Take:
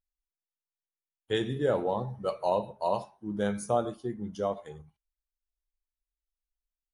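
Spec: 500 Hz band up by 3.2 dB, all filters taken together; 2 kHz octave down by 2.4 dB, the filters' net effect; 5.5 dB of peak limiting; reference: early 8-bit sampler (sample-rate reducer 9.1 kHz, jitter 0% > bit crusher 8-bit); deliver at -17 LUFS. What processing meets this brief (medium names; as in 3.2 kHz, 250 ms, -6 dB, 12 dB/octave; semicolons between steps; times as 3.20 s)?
peaking EQ 500 Hz +4 dB; peaking EQ 2 kHz -3.5 dB; peak limiter -17 dBFS; sample-rate reducer 9.1 kHz, jitter 0%; bit crusher 8-bit; trim +13.5 dB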